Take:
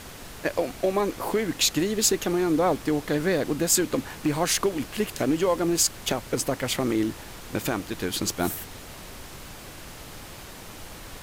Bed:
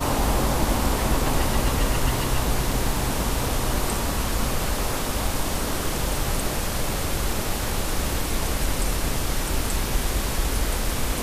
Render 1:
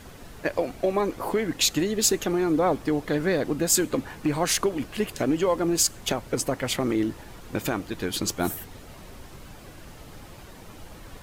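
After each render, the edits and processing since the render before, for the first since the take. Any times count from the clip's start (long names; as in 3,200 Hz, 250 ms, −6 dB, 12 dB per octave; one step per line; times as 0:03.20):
broadband denoise 8 dB, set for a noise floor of −42 dBFS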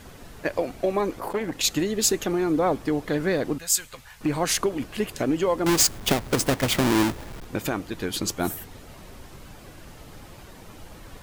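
0:01.18–0:01.65: saturating transformer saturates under 1,100 Hz
0:03.58–0:04.21: guitar amp tone stack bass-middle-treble 10-0-10
0:05.66–0:07.45: each half-wave held at its own peak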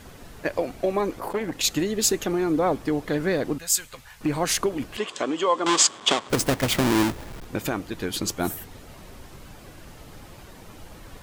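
0:04.97–0:06.30: loudspeaker in its box 330–7,800 Hz, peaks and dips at 1,100 Hz +10 dB, 3,300 Hz +9 dB, 7,700 Hz +6 dB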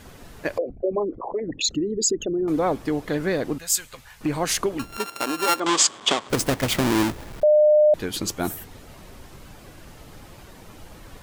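0:00.58–0:02.48: spectral envelope exaggerated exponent 3
0:04.79–0:05.60: samples sorted by size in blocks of 32 samples
0:07.43–0:07.94: beep over 604 Hz −12 dBFS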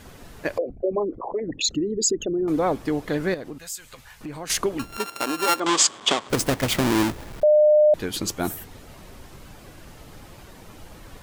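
0:03.34–0:04.50: downward compressor 2 to 1, threshold −39 dBFS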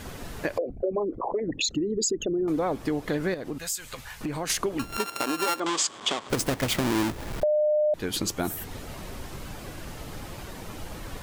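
in parallel at −1 dB: brickwall limiter −15.5 dBFS, peak gain reduction 10.5 dB
on the sum: downward compressor 2.5 to 1, threshold −28 dBFS, peak gain reduction 11.5 dB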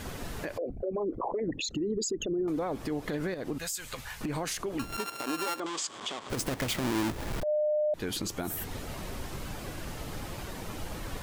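downward compressor, threshold −26 dBFS, peak gain reduction 5.5 dB
brickwall limiter −24 dBFS, peak gain reduction 11 dB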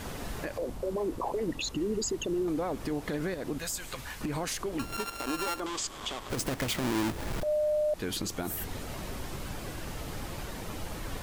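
mix in bed −24.5 dB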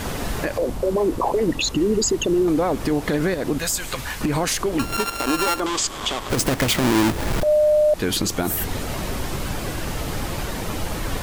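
level +11.5 dB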